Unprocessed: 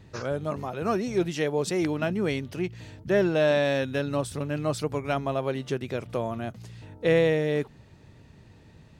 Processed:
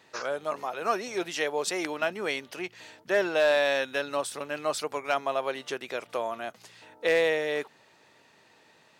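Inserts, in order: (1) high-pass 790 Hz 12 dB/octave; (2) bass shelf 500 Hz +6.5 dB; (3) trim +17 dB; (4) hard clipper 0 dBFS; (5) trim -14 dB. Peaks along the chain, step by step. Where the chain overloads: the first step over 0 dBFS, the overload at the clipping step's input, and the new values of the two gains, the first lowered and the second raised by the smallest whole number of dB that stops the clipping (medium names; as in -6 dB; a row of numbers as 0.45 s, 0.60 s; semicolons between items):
-14.5 dBFS, -13.0 dBFS, +4.0 dBFS, 0.0 dBFS, -14.0 dBFS; step 3, 4.0 dB; step 3 +13 dB, step 5 -10 dB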